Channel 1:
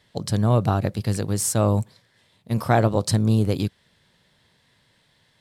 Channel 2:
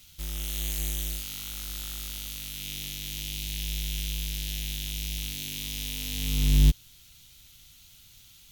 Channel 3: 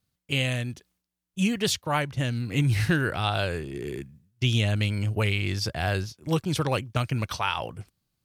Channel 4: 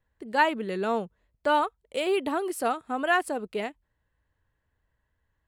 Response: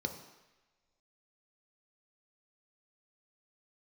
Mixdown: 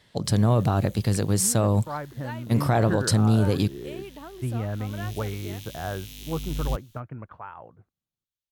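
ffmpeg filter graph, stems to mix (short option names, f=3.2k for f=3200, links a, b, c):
-filter_complex "[0:a]volume=2dB[a];[1:a]agate=range=-34dB:threshold=-45dB:ratio=16:detection=peak,adelay=50,volume=-9dB,afade=t=in:st=4.7:d=0.48:silence=0.281838[b];[2:a]lowpass=f=1.5k:w=0.5412,lowpass=f=1.5k:w=1.3066,lowshelf=f=73:g=-11,dynaudnorm=f=280:g=13:m=13dB,volume=-13.5dB[c];[3:a]acompressor=threshold=-30dB:ratio=2,adelay=1900,volume=-10.5dB[d];[a][b][c][d]amix=inputs=4:normalize=0,alimiter=limit=-12.5dB:level=0:latency=1:release=32"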